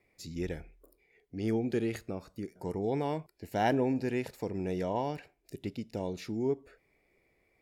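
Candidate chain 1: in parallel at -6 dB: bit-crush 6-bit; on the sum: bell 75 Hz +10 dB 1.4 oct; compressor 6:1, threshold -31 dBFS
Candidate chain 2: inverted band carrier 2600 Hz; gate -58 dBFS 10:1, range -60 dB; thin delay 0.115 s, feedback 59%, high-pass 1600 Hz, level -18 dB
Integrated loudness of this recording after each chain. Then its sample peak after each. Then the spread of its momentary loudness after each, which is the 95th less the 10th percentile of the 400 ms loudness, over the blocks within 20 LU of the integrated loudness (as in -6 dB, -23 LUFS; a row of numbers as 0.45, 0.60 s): -37.0, -31.0 LUFS; -21.0, -15.0 dBFS; 7, 13 LU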